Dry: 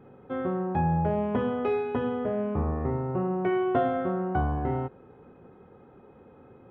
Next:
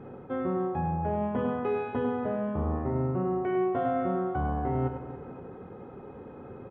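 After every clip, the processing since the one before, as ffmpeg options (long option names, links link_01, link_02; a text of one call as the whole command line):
ffmpeg -i in.wav -af "lowpass=frequency=2500:poles=1,areverse,acompressor=threshold=-35dB:ratio=6,areverse,aecho=1:1:100|280|522:0.398|0.224|0.126,volume=7.5dB" out.wav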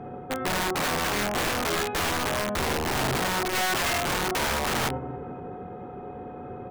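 ffmpeg -i in.wav -af "bandreject=frequency=52.35:width_type=h:width=4,bandreject=frequency=104.7:width_type=h:width=4,bandreject=frequency=157.05:width_type=h:width=4,bandreject=frequency=209.4:width_type=h:width=4,bandreject=frequency=261.75:width_type=h:width=4,bandreject=frequency=314.1:width_type=h:width=4,bandreject=frequency=366.45:width_type=h:width=4,bandreject=frequency=418.8:width_type=h:width=4,bandreject=frequency=471.15:width_type=h:width=4,bandreject=frequency=523.5:width_type=h:width=4,bandreject=frequency=575.85:width_type=h:width=4,bandreject=frequency=628.2:width_type=h:width=4,bandreject=frequency=680.55:width_type=h:width=4,bandreject=frequency=732.9:width_type=h:width=4,bandreject=frequency=785.25:width_type=h:width=4,bandreject=frequency=837.6:width_type=h:width=4,bandreject=frequency=889.95:width_type=h:width=4,bandreject=frequency=942.3:width_type=h:width=4,bandreject=frequency=994.65:width_type=h:width=4,bandreject=frequency=1047:width_type=h:width=4,bandreject=frequency=1099.35:width_type=h:width=4,bandreject=frequency=1151.7:width_type=h:width=4,bandreject=frequency=1204.05:width_type=h:width=4,bandreject=frequency=1256.4:width_type=h:width=4,aeval=exprs='(mod(21.1*val(0)+1,2)-1)/21.1':channel_layout=same,aeval=exprs='val(0)+0.00447*sin(2*PI*730*n/s)':channel_layout=same,volume=5dB" out.wav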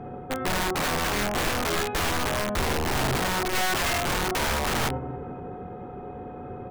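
ffmpeg -i in.wav -af "lowshelf=frequency=71:gain=8.5" out.wav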